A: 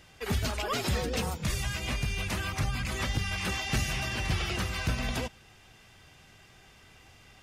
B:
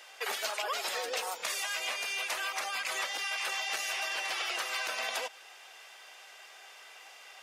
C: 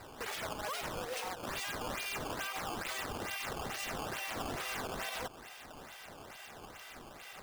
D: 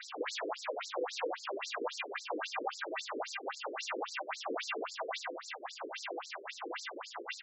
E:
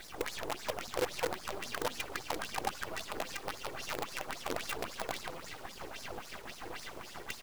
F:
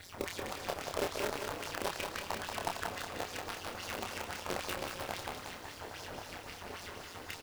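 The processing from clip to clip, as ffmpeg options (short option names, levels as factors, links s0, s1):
-af "highpass=f=540:w=0.5412,highpass=f=540:w=1.3066,acompressor=threshold=0.0141:ratio=6,volume=2"
-af "alimiter=level_in=2.24:limit=0.0631:level=0:latency=1:release=117,volume=0.447,acrusher=samples=13:mix=1:aa=0.000001:lfo=1:lforange=20.8:lforate=2.3,volume=1.19"
-filter_complex "[0:a]acrossover=split=510|2100[s0][s1][s2];[s0]acompressor=threshold=0.00316:ratio=4[s3];[s1]acompressor=threshold=0.00282:ratio=4[s4];[s2]acompressor=threshold=0.00178:ratio=4[s5];[s3][s4][s5]amix=inputs=3:normalize=0,aecho=1:1:20|52|103.2|185.1|316.2:0.631|0.398|0.251|0.158|0.1,afftfilt=real='re*between(b*sr/1024,360*pow(5700/360,0.5+0.5*sin(2*PI*3.7*pts/sr))/1.41,360*pow(5700/360,0.5+0.5*sin(2*PI*3.7*pts/sr))*1.41)':imag='im*between(b*sr/1024,360*pow(5700/360,0.5+0.5*sin(2*PI*3.7*pts/sr))/1.41,360*pow(5700/360,0.5+0.5*sin(2*PI*3.7*pts/sr))*1.41)':win_size=1024:overlap=0.75,volume=5.62"
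-filter_complex "[0:a]asplit=2[s0][s1];[s1]asplit=5[s2][s3][s4][s5][s6];[s2]adelay=334,afreqshift=-130,volume=0.299[s7];[s3]adelay=668,afreqshift=-260,volume=0.146[s8];[s4]adelay=1002,afreqshift=-390,volume=0.0716[s9];[s5]adelay=1336,afreqshift=-520,volume=0.0351[s10];[s6]adelay=1670,afreqshift=-650,volume=0.0172[s11];[s7][s8][s9][s10][s11]amix=inputs=5:normalize=0[s12];[s0][s12]amix=inputs=2:normalize=0,acrusher=bits=6:dc=4:mix=0:aa=0.000001,volume=1.19"
-filter_complex "[0:a]aeval=exprs='val(0)*sin(2*PI*89*n/s)':c=same,asplit=2[s0][s1];[s1]adelay=28,volume=0.631[s2];[s0][s2]amix=inputs=2:normalize=0,aecho=1:1:183|366|549|732|915:0.562|0.242|0.104|0.0447|0.0192"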